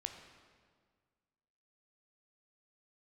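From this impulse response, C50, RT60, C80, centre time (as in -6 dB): 6.5 dB, 1.8 s, 8.0 dB, 33 ms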